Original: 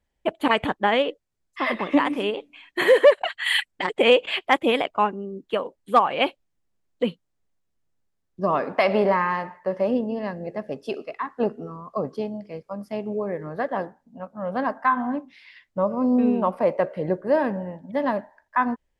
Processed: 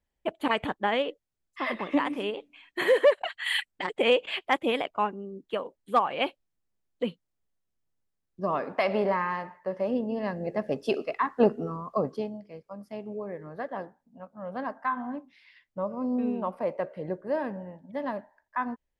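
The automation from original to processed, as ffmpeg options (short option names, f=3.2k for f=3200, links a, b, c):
-af "volume=2.5dB,afade=t=in:st=9.89:d=0.92:silence=0.375837,afade=t=out:st=11.73:d=0.69:silence=0.281838"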